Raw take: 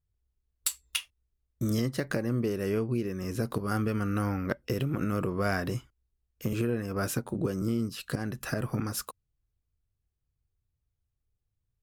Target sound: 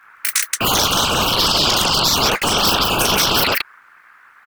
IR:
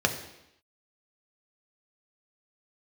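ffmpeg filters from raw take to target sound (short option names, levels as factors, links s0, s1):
-filter_complex "[0:a]lowshelf=f=220:t=q:w=3:g=-7.5,aeval=exprs='val(0)*sin(2*PI*480*n/s)':c=same,afftfilt=real='re*lt(hypot(re,im),0.178)':imag='im*lt(hypot(re,im),0.178)':win_size=1024:overlap=0.75,acrossover=split=420|1300[s0][s1][s2];[s1]acontrast=34[s3];[s0][s3][s2]amix=inputs=3:normalize=0,aeval=exprs='val(0)+0.00224*sin(2*PI*11000*n/s)':c=same,aecho=1:1:47|98|466:0.447|0.668|0.562,asplit=2[s4][s5];[s5]acompressor=threshold=0.00708:ratio=12,volume=1.12[s6];[s4][s6]amix=inputs=2:normalize=0,afftfilt=real='hypot(re,im)*cos(2*PI*random(0))':imag='hypot(re,im)*sin(2*PI*random(1))':win_size=512:overlap=0.75,equalizer=f=690:t=o:w=0.99:g=14,afftfilt=real='re*lt(hypot(re,im),0.0501)':imag='im*lt(hypot(re,im),0.0501)':win_size=1024:overlap=0.75,asetrate=116865,aresample=44100,alimiter=level_in=35.5:limit=0.891:release=50:level=0:latency=1,volume=0.668"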